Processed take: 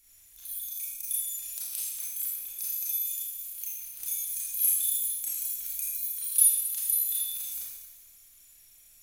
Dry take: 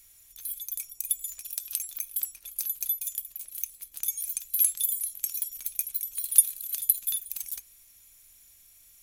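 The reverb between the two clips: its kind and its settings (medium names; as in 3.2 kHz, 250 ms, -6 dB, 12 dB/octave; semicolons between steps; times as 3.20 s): Schroeder reverb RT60 1.2 s, combs from 26 ms, DRR -7.5 dB; trim -8 dB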